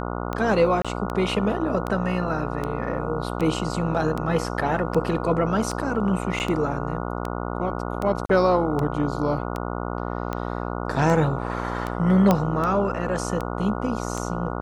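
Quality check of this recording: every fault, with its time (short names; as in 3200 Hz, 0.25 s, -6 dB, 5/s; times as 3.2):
buzz 60 Hz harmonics 24 -29 dBFS
tick 78 rpm -15 dBFS
0.82–0.85 gap 26 ms
6.39–6.4 gap 9.5 ms
8.26–8.29 gap 34 ms
12.31 pop -6 dBFS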